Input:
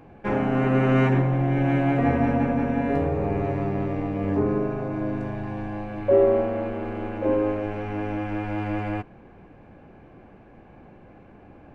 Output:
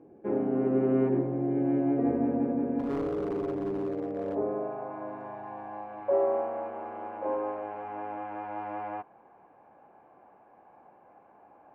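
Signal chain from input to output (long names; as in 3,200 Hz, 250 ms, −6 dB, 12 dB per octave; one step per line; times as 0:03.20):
band-pass filter sweep 360 Hz → 870 Hz, 0:03.78–0:04.91
0:02.79–0:04.35: gain into a clipping stage and back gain 28 dB
level +1 dB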